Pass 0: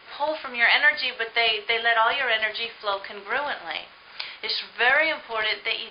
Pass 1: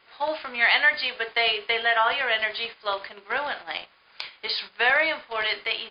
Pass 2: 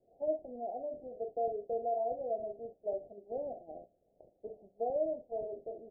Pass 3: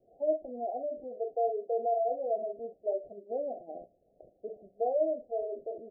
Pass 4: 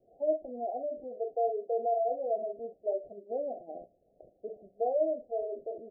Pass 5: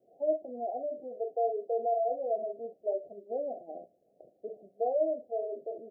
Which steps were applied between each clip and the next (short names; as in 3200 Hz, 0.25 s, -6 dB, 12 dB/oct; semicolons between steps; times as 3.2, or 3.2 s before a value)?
gate -35 dBFS, range -9 dB; gain -1 dB
steep low-pass 710 Hz 96 dB/oct; gain -3.5 dB
spectral gate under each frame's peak -20 dB strong; gain +4.5 dB
nothing audible
HPF 160 Hz 12 dB/oct